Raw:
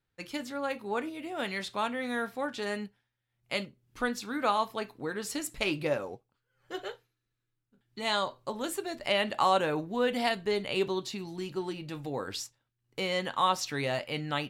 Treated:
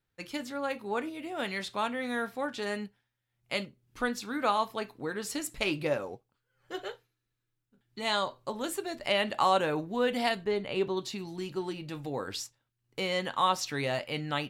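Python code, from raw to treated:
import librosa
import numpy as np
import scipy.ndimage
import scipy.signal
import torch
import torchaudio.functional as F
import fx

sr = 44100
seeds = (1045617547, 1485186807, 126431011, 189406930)

y = fx.high_shelf(x, sr, hz=3400.0, db=-11.0, at=(10.44, 10.97))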